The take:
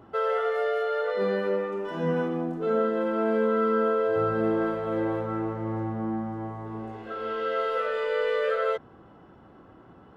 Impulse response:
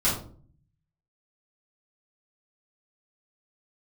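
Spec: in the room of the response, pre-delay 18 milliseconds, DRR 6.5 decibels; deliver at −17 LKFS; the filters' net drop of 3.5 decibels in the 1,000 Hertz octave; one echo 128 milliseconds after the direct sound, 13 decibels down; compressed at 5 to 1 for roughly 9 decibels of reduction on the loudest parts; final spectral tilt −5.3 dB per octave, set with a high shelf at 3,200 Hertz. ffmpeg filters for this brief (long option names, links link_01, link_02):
-filter_complex "[0:a]equalizer=frequency=1000:width_type=o:gain=-4.5,highshelf=frequency=3200:gain=-5,acompressor=threshold=-32dB:ratio=5,aecho=1:1:128:0.224,asplit=2[link_01][link_02];[1:a]atrim=start_sample=2205,adelay=18[link_03];[link_02][link_03]afir=irnorm=-1:irlink=0,volume=-18.5dB[link_04];[link_01][link_04]amix=inputs=2:normalize=0,volume=17dB"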